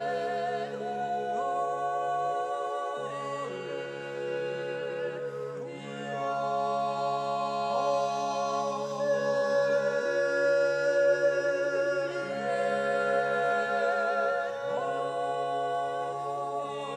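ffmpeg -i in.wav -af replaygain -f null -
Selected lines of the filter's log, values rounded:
track_gain = +10.6 dB
track_peak = 0.121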